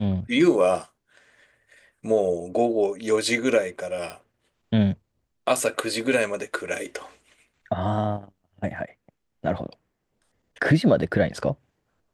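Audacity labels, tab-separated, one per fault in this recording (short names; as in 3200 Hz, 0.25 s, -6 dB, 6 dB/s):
4.100000	4.100000	pop -20 dBFS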